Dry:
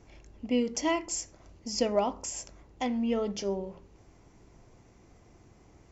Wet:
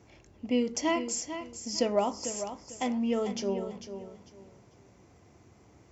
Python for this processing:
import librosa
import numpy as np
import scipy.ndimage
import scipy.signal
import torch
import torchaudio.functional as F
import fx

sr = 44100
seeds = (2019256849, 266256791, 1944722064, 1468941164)

p1 = scipy.signal.sosfilt(scipy.signal.butter(4, 68.0, 'highpass', fs=sr, output='sos'), x)
y = p1 + fx.echo_feedback(p1, sr, ms=447, feedback_pct=25, wet_db=-10.0, dry=0)